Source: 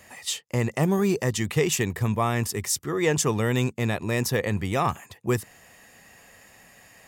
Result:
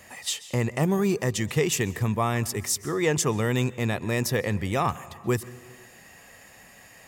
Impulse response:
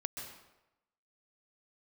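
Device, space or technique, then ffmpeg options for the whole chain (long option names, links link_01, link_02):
compressed reverb return: -filter_complex "[0:a]asplit=2[link_01][link_02];[1:a]atrim=start_sample=2205[link_03];[link_02][link_03]afir=irnorm=-1:irlink=0,acompressor=threshold=-34dB:ratio=4,volume=-4dB[link_04];[link_01][link_04]amix=inputs=2:normalize=0,volume=-2dB"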